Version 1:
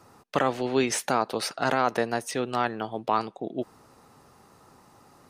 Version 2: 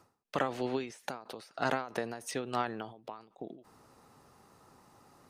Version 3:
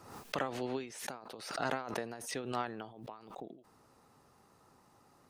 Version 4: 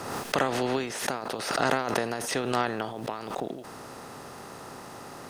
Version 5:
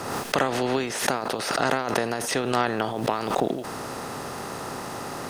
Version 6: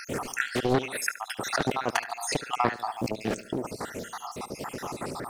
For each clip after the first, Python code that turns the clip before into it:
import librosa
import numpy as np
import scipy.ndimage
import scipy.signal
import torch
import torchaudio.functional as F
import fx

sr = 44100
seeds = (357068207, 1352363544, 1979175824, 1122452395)

y1 = fx.end_taper(x, sr, db_per_s=120.0)
y1 = F.gain(torch.from_numpy(y1), -5.0).numpy()
y2 = fx.pre_swell(y1, sr, db_per_s=67.0)
y2 = F.gain(torch.from_numpy(y2), -4.5).numpy()
y3 = fx.bin_compress(y2, sr, power=0.6)
y3 = F.gain(torch.from_numpy(y3), 7.5).numpy()
y4 = fx.rider(y3, sr, range_db=5, speed_s=0.5)
y4 = F.gain(torch.from_numpy(y4), 4.0).numpy()
y5 = fx.spec_dropout(y4, sr, seeds[0], share_pct=70)
y5 = fx.echo_feedback(y5, sr, ms=72, feedback_pct=44, wet_db=-15.5)
y5 = fx.doppler_dist(y5, sr, depth_ms=0.79)
y5 = F.gain(torch.from_numpy(y5), 2.0).numpy()